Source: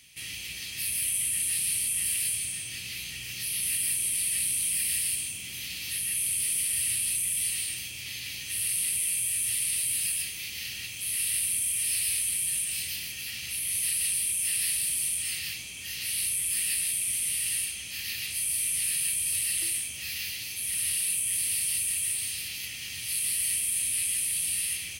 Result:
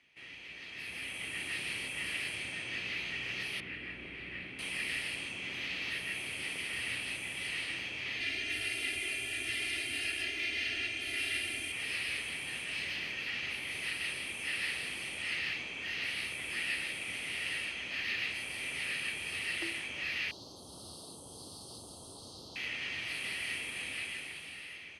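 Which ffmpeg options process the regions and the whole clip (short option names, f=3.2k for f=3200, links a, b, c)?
-filter_complex "[0:a]asettb=1/sr,asplit=3[a][b][c];[a]atrim=end=3.604[d];[b]atrim=start=3.6:end=4.59,asetpts=PTS-STARTPTS,afade=t=in:d=0.004:c=qsin,afade=t=out:st=0.986:d=0.004:c=qsin,lowpass=1.9k,equalizer=f=910:t=o:w=1.1:g=-7,aeval=exprs='val(0)+0.00178*(sin(2*PI*60*n/s)+sin(2*PI*2*60*n/s)/2+sin(2*PI*3*60*n/s)/3+sin(2*PI*4*60*n/s)/4+sin(2*PI*5*60*n/s)/5)':c=same[e];[c]atrim=start=4.586[f];[d][e]acrossfade=d=0.004:c1=hsin:c2=qsin[g];[g][f]acrossfade=d=0.004:c1=qsin:c2=hsin,asettb=1/sr,asplit=3[h][i][j];[h]atrim=end=8.204[k];[i]atrim=start=8.2:end=11.72,asetpts=PTS-STARTPTS,afade=t=in:d=0.004:c=qsin,afade=t=out:st=3.516:d=0.004:c=qsin,equalizer=f=1k:t=o:w=0.5:g=-11.5,aecho=1:1:2.9:0.98,atrim=end_sample=155232,aeval=exprs='val(0)+0.00891*sin(2*PI*8700*n/s)':c=same[l];[j]atrim=start=11.716[m];[k][l]acrossfade=d=0.004:c1=hsin:c2=qsin[n];[n][m]acrossfade=d=0.004:c1=qsin:c2=hsin,asettb=1/sr,asplit=3[o][p][q];[o]atrim=end=20.314[r];[p]atrim=start=20.31:end=22.56,asetpts=PTS-STARTPTS,afade=t=in:d=0.004:c=qsin,afade=t=out:st=2.246:d=0.004:c=qsin,asuperstop=centerf=2100:order=8:qfactor=0.72,highshelf=f=9.1k:g=-5[s];[q]atrim=start=22.556[t];[r][s]acrossfade=d=0.004:c1=hsin:c2=qsin[u];[u][t]acrossfade=d=0.004:c1=qsin:c2=hsin,lowpass=5.3k,acrossover=split=270 2100:gain=0.141 1 0.0891[v][w][x];[v][w][x]amix=inputs=3:normalize=0,dynaudnorm=f=150:g=13:m=11dB"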